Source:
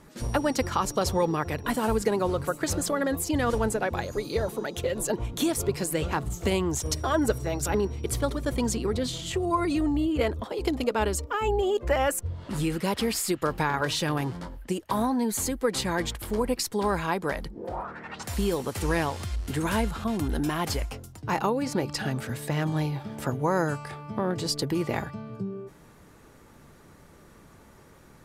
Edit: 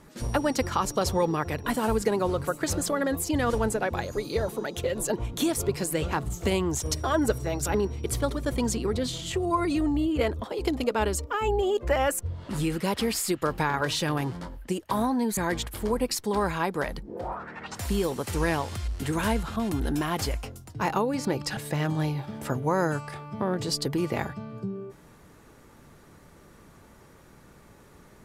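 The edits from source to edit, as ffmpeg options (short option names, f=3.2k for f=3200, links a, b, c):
-filter_complex "[0:a]asplit=3[a][b][c];[a]atrim=end=15.372[d];[b]atrim=start=15.848:end=22.052[e];[c]atrim=start=22.338[f];[d][e]acrossfade=d=0.004:c1=hsin:c2=hsin[g];[g][f]acrossfade=d=0.004:c1=hsin:c2=hsin"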